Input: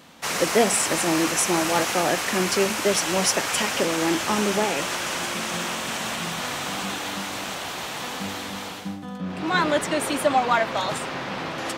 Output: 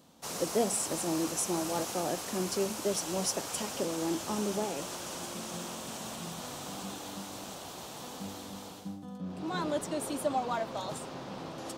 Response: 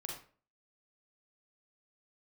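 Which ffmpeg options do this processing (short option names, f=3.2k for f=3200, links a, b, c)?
-af "equalizer=f=2k:t=o:w=1.5:g=-13,volume=-8dB"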